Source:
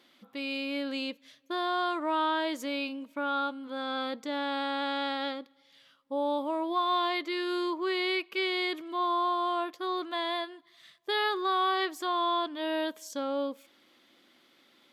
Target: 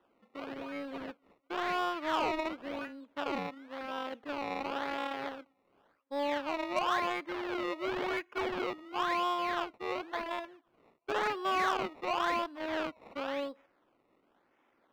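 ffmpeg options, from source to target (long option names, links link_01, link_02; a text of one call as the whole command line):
ffmpeg -i in.wav -filter_complex "[0:a]acrusher=samples=19:mix=1:aa=0.000001:lfo=1:lforange=19:lforate=0.94,acrossover=split=230 3400:gain=0.224 1 0.0794[link_01][link_02][link_03];[link_01][link_02][link_03]amix=inputs=3:normalize=0,aeval=exprs='0.168*(cos(1*acos(clip(val(0)/0.168,-1,1)))-cos(1*PI/2))+0.00944*(cos(5*acos(clip(val(0)/0.168,-1,1)))-cos(5*PI/2))+0.0168*(cos(7*acos(clip(val(0)/0.168,-1,1)))-cos(7*PI/2))':channel_layout=same,volume=-2dB" out.wav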